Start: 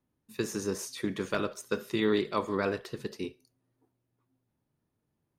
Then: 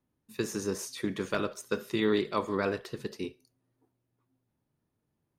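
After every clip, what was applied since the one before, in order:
no processing that can be heard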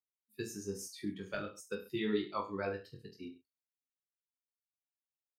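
spectral dynamics exaggerated over time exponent 2
reverse bouncing-ball delay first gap 20 ms, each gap 1.15×, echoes 5
level −5.5 dB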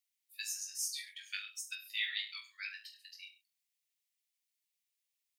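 Butterworth high-pass 1,900 Hz 48 dB per octave
level +9.5 dB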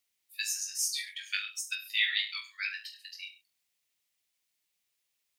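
high-shelf EQ 5,000 Hz −4 dB
level +9 dB

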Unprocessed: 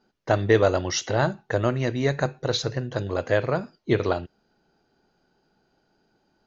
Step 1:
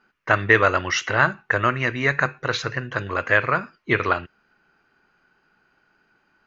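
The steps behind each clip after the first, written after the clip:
flat-topped bell 1,700 Hz +14 dB
level −2 dB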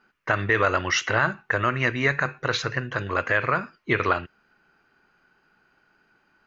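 brickwall limiter −9 dBFS, peak gain reduction 7.5 dB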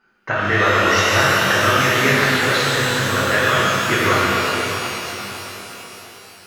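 reverb with rising layers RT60 4 s, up +12 semitones, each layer −8 dB, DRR −8 dB
level −1 dB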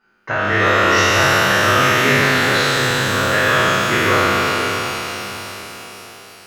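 peak hold with a decay on every bin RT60 2.29 s
level −2 dB

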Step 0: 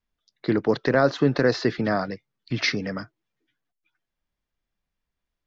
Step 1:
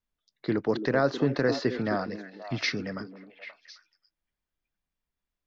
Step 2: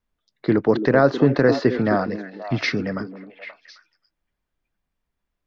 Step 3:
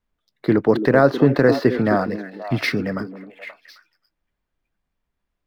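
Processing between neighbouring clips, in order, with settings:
echo through a band-pass that steps 264 ms, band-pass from 310 Hz, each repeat 1.4 octaves, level −6.5 dB; level −5 dB
high-shelf EQ 3,400 Hz −11 dB; level +9 dB
running median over 5 samples; level +1.5 dB

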